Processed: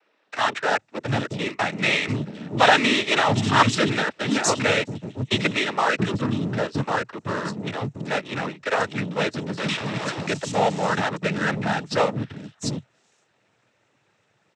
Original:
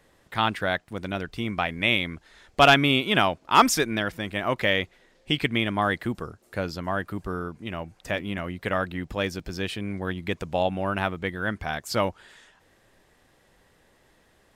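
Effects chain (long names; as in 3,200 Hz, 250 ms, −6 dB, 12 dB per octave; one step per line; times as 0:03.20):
0:09.57–0:10.26: sign of each sample alone
three-band delay without the direct sound mids, lows, highs 680/750 ms, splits 280/4,800 Hz
in parallel at −4 dB: fuzz pedal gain 29 dB, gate −36 dBFS
on the sum: cochlear-implant simulation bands 12
level −3 dB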